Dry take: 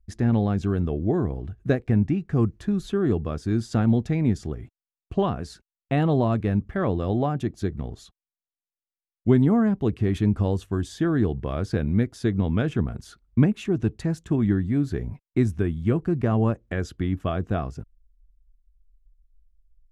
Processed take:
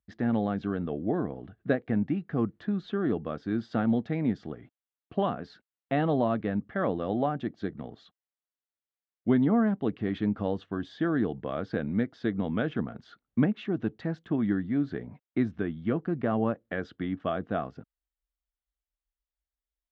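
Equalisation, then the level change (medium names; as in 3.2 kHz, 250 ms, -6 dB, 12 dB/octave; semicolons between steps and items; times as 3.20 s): cabinet simulation 240–3500 Hz, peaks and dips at 380 Hz -7 dB, 980 Hz -4 dB, 2.5 kHz -7 dB; 0.0 dB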